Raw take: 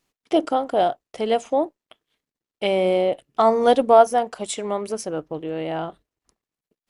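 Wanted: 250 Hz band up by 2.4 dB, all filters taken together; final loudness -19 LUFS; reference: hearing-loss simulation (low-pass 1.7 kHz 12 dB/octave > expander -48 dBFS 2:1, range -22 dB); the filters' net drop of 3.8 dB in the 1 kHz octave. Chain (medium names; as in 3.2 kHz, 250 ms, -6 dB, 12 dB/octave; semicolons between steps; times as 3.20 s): low-pass 1.7 kHz 12 dB/octave; peaking EQ 250 Hz +3.5 dB; peaking EQ 1 kHz -6.5 dB; expander -48 dBFS 2:1, range -22 dB; trim +4 dB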